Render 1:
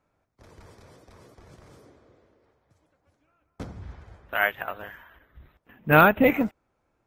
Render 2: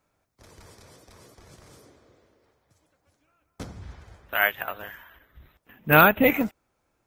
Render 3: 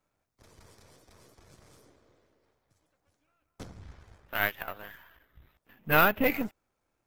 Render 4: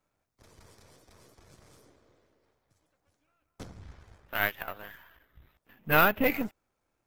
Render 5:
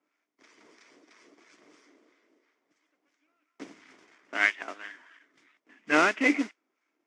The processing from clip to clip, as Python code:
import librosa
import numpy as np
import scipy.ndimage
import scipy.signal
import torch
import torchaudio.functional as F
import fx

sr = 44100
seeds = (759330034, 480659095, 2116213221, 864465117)

y1 = fx.high_shelf(x, sr, hz=3300.0, db=11.0)
y1 = y1 * librosa.db_to_amplitude(-1.0)
y2 = np.where(y1 < 0.0, 10.0 ** (-7.0 / 20.0) * y1, y1)
y2 = y2 * librosa.db_to_amplitude(-4.0)
y3 = y2
y4 = fx.harmonic_tremolo(y3, sr, hz=3.0, depth_pct=70, crossover_hz=1000.0)
y4 = fx.mod_noise(y4, sr, seeds[0], snr_db=11)
y4 = fx.cabinet(y4, sr, low_hz=270.0, low_slope=24, high_hz=6100.0, hz=(290.0, 530.0, 810.0, 2100.0, 4100.0), db=(7, -7, -6, 8, -7))
y4 = y4 * librosa.db_to_amplitude(5.0)